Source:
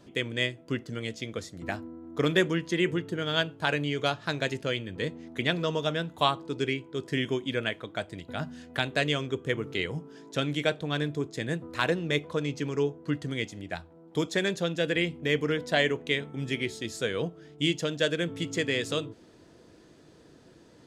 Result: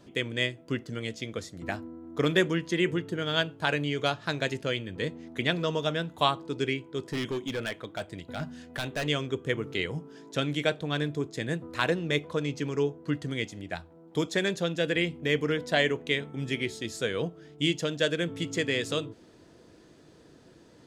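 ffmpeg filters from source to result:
-filter_complex "[0:a]asplit=3[a][b][c];[a]afade=t=out:st=6.98:d=0.02[d];[b]asoftclip=type=hard:threshold=-27dB,afade=t=in:st=6.98:d=0.02,afade=t=out:st=9.05:d=0.02[e];[c]afade=t=in:st=9.05:d=0.02[f];[d][e][f]amix=inputs=3:normalize=0"

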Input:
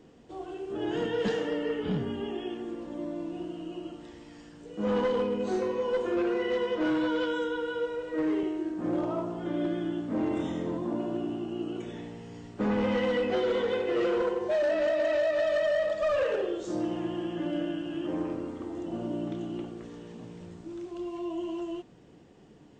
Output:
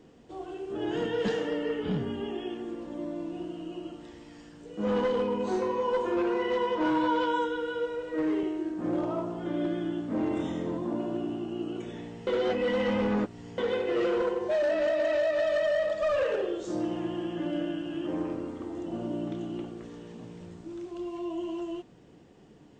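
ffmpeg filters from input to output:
-filter_complex "[0:a]asettb=1/sr,asplit=3[a][b][c];[a]atrim=end=5.274[d];[b]atrim=start=5.27:end=7.46,asetpts=PTS-STARTPTS,afade=t=in:d=0.004:c=qsin,afade=t=out:st=2.186:d=0.004:c=qsin,equalizer=f=950:w=7.7:g=12.5[e];[c]atrim=start=7.456[f];[d][e]acrossfade=d=0.004:c1=hsin:c2=qsin[g];[g][f]acrossfade=d=0.004:c1=qsin:c2=hsin,asplit=3[h][i][j];[h]atrim=end=12.272[k];[i]atrim=start=12.268:end=13.582,asetpts=PTS-STARTPTS,areverse[l];[j]atrim=start=13.578[m];[k][l]acrossfade=d=0.004:c1=hsin:c2=hsin[n];[n][m]acrossfade=d=0.004:c1=hsin:c2=hsin"

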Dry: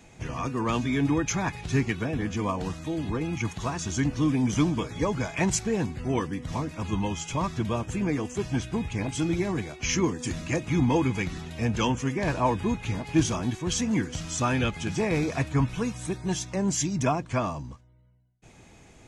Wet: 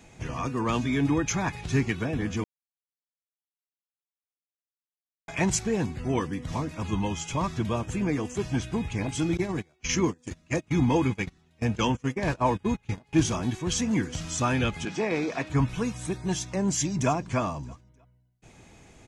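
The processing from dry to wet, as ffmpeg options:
-filter_complex "[0:a]asettb=1/sr,asplit=3[a][b][c];[a]atrim=end=9.374[d];[b]atrim=start=9.37:end=13.13,asetpts=PTS-STARTPTS,afade=t=in:d=0.004:c=qsin,afade=t=out:st=3.756:d=0.004:c=qsin,agate=range=-25dB:threshold=-29dB:ratio=16:release=100:detection=peak[e];[c]atrim=start=13.126[f];[d][e]acrossfade=d=0.004:c1=hsin:c2=qsin[g];[g][f]acrossfade=d=0.004:c1=qsin:c2=hsin,asettb=1/sr,asplit=3[h][i][j];[h]atrim=end=14.854[k];[i]atrim=start=14.85:end=15.5,asetpts=PTS-STARTPTS,afade=t=in:d=0.004:c=qsin,afade=t=out:st=0.646:d=0.004:c=qsin,acrossover=split=190 6400:gain=0.0891 1 0.178[l][m][n];[l][m][n]amix=inputs=3:normalize=0[o];[j]atrim=start=15.496[p];[k][o]acrossfade=d=0.004:c1=hsin:c2=qsin[q];[q][p]acrossfade=d=0.004:c1=qsin:c2=hsin,asplit=2[r][s];[s]afade=t=in:st=16.49:d=0.01,afade=t=out:st=17.11:d=0.01,aecho=0:1:310|620|930:0.141254|0.0423761|0.0127128[t];[r][t]amix=inputs=2:normalize=0,asplit=3[u][v][w];[u]atrim=end=2.44,asetpts=PTS-STARTPTS,afade=t=out:st=2.436:d=0.004:c=hsin[x];[v]atrim=start=2.44:end=5.28,asetpts=PTS-STARTPTS,volume=0[y];[w]atrim=start=5.28,asetpts=PTS-STARTPTS,afade=t=in:d=0.004:c=hsin[z];[x][y][z]concat=n=3:v=0:a=1"

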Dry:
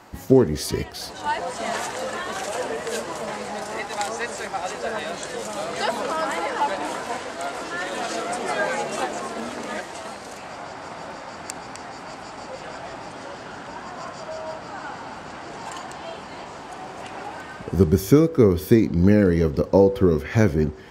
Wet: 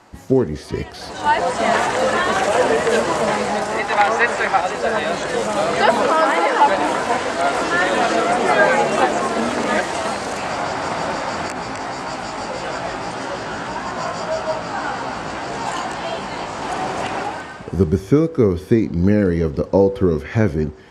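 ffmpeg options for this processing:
-filter_complex "[0:a]asettb=1/sr,asplit=3[a][b][c];[a]atrim=end=3.884[d];[b]atrim=start=3.88:end=4.61,asetpts=PTS-STARTPTS,afade=t=in:d=0.004:c=qsin,afade=t=out:st=0.726:d=0.004:c=qsin,equalizer=f=1.8k:w=0.41:g=7[e];[c]atrim=start=4.606[f];[d][e]acrossfade=d=0.004:c1=hsin:c2=qsin[g];[g][f]acrossfade=d=0.004:c1=qsin:c2=hsin,asettb=1/sr,asplit=3[h][i][j];[h]atrim=end=6.084[k];[i]atrim=start=6.08:end=6.66,asetpts=PTS-STARTPTS,afade=t=in:d=0.004:c=qsin,afade=t=out:st=0.576:d=0.004:c=qsin,highpass=f=220:w=0.5412,highpass=f=220:w=1.3066[l];[j]atrim=start=6.656[m];[k][l]acrossfade=d=0.004:c1=hsin:c2=qsin[n];[n][m]acrossfade=d=0.004:c1=qsin:c2=hsin,asettb=1/sr,asplit=3[o][p][q];[o]atrim=end=11.484[r];[p]atrim=start=11.48:end=16.62,asetpts=PTS-STARTPTS,afade=t=in:d=0.004:c=qsin,afade=t=out:st=5.136:d=0.004:c=qsin,flanger=delay=15:depth=3.8:speed=1.7[s];[q]atrim=start=16.616[t];[r][s]acrossfade=d=0.004:c1=hsin:c2=qsin[u];[u][t]acrossfade=d=0.004:c1=qsin:c2=hsin,acrossover=split=3000[v][w];[w]acompressor=threshold=-42dB:ratio=4:attack=1:release=60[x];[v][x]amix=inputs=2:normalize=0,lowpass=f=11k:w=0.5412,lowpass=f=11k:w=1.3066,dynaudnorm=f=120:g=9:m=14dB,volume=-1dB"

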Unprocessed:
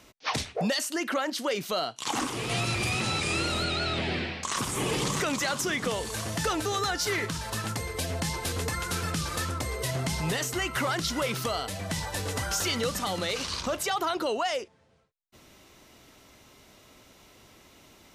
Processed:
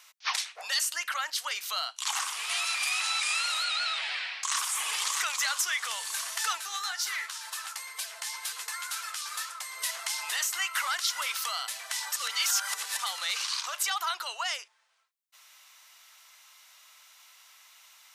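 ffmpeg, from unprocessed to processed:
-filter_complex "[0:a]asplit=3[a][b][c];[a]afade=t=out:st=6.57:d=0.02[d];[b]flanger=delay=5.1:depth=7.8:regen=40:speed=2:shape=triangular,afade=t=in:st=6.57:d=0.02,afade=t=out:st=9.76:d=0.02[e];[c]afade=t=in:st=9.76:d=0.02[f];[d][e][f]amix=inputs=3:normalize=0,asplit=3[g][h][i];[g]atrim=end=12.122[j];[h]atrim=start=12.118:end=12.992,asetpts=PTS-STARTPTS,areverse[k];[i]atrim=start=12.988[l];[j][k]acrossfade=d=0.004:c1=hsin:c2=hsin[m];[m][l]acrossfade=d=0.004:c1=hsin:c2=hsin,highpass=f=1k:w=0.5412,highpass=f=1k:w=1.3066,highshelf=f=4.8k:g=5"

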